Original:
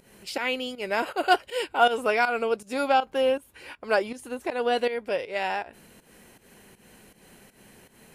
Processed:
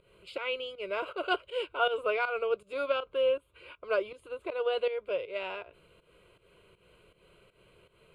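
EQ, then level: distance through air 76 m; tone controls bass 0 dB, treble -3 dB; static phaser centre 1.2 kHz, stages 8; -3.0 dB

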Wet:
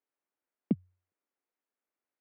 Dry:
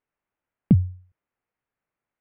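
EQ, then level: high-pass 260 Hz 24 dB/octave; bass shelf 340 Hz +8.5 dB; -8.0 dB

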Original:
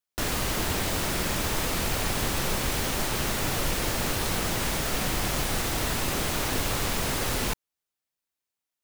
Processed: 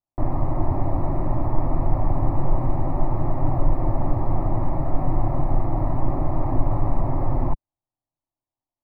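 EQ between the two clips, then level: inverse Chebyshev low-pass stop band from 2.9 kHz, stop band 40 dB; bass shelf 110 Hz +12 dB; static phaser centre 300 Hz, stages 8; +5.5 dB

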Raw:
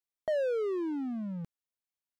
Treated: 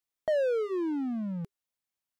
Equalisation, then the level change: band-stop 400 Hz, Q 12; +3.0 dB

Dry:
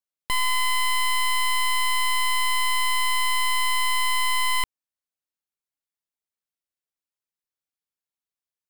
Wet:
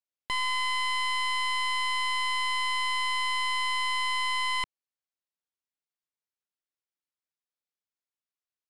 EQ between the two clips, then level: low-pass 6.4 kHz 12 dB/octave; bass shelf 120 Hz -7.5 dB; -4.0 dB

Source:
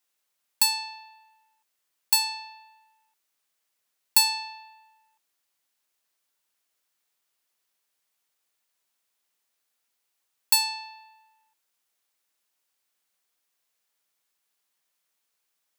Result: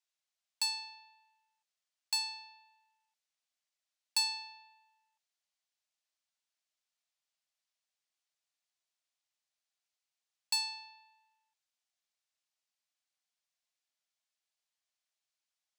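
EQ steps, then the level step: resonant high-pass 630 Hz, resonance Q 3.6; distance through air 120 m; differentiator; 0.0 dB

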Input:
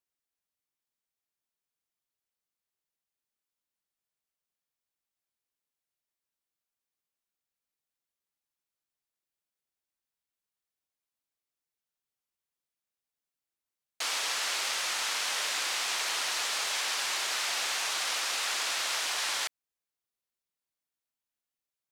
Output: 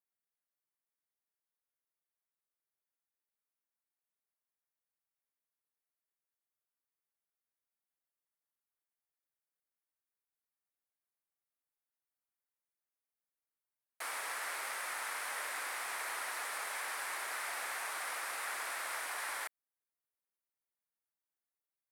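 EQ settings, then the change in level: bass shelf 120 Hz -7 dB; bass shelf 240 Hz -9.5 dB; high-order bell 4.4 kHz -13.5 dB; -3.5 dB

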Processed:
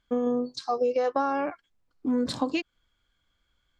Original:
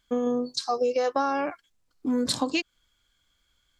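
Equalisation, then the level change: low-pass 2 kHz 6 dB/octave; 0.0 dB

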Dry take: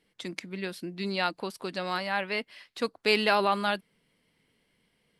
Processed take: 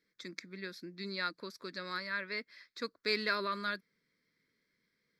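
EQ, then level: bass shelf 96 Hz -9 dB; bass shelf 280 Hz -6.5 dB; static phaser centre 2.9 kHz, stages 6; -3.5 dB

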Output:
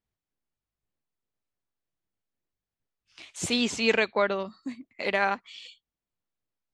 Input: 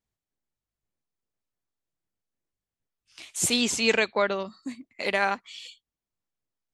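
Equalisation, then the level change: distance through air 54 m; treble shelf 6.6 kHz -6 dB; 0.0 dB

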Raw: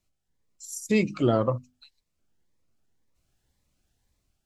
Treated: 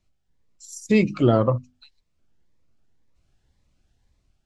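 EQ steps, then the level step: distance through air 66 m; bass shelf 120 Hz +5 dB; +4.0 dB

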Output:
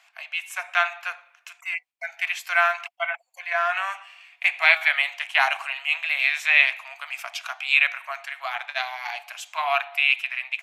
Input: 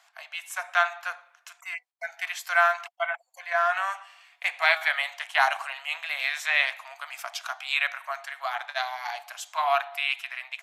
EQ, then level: peaking EQ 2.5 kHz +10.5 dB 0.6 oct; -1.0 dB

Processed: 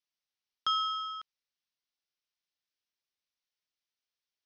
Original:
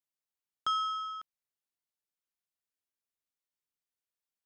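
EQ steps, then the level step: elliptic low-pass 5.9 kHz; peaking EQ 4.4 kHz +9 dB 2.3 oct; -2.0 dB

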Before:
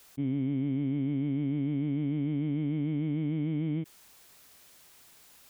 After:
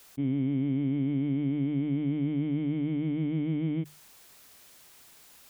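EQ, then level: hum notches 50/100/150 Hz; +2.0 dB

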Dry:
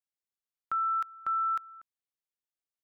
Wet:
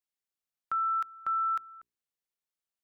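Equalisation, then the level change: hum notches 60/120/180/240/300/360/420 Hz; 0.0 dB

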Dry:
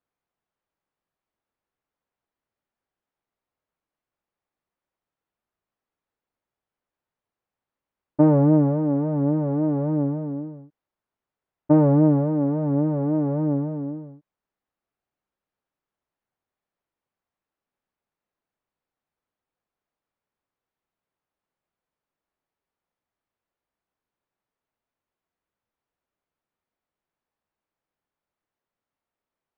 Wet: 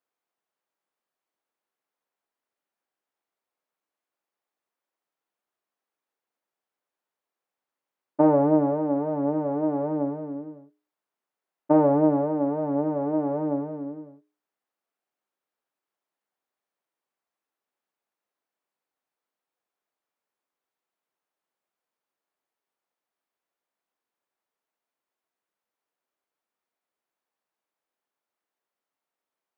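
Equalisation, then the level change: high-pass 290 Hz 12 dB/octave; hum notches 60/120/180/240/300/360/420/480/540/600 Hz; dynamic bell 780 Hz, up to +5 dB, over -36 dBFS, Q 1.5; 0.0 dB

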